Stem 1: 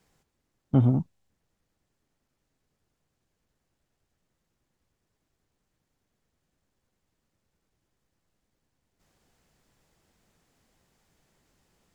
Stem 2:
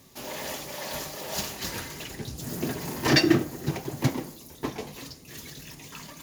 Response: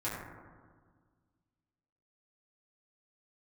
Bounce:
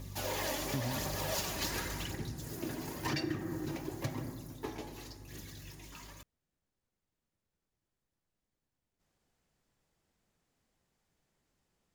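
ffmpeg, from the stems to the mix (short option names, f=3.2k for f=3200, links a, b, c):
-filter_complex "[0:a]volume=-10dB[a];[1:a]aeval=exprs='val(0)+0.00355*(sin(2*PI*50*n/s)+sin(2*PI*2*50*n/s)/2+sin(2*PI*3*50*n/s)/3+sin(2*PI*4*50*n/s)/4+sin(2*PI*5*50*n/s)/5)':c=same,aphaser=in_gain=1:out_gain=1:delay=3.6:decay=0.43:speed=0.93:type=triangular,volume=-1.5dB,afade=t=out:st=1.67:d=0.63:silence=0.316228,asplit=2[b][c];[c]volume=-8.5dB[d];[2:a]atrim=start_sample=2205[e];[d][e]afir=irnorm=-1:irlink=0[f];[a][b][f]amix=inputs=3:normalize=0,acompressor=threshold=-32dB:ratio=6"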